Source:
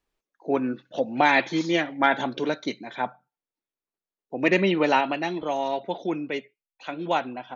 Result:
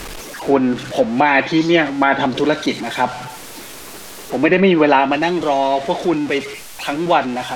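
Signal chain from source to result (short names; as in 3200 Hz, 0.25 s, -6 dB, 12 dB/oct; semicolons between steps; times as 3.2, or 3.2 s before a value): zero-crossing step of -32.5 dBFS; treble ducked by the level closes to 2900 Hz, closed at -16.5 dBFS; maximiser +10 dB; gain -1 dB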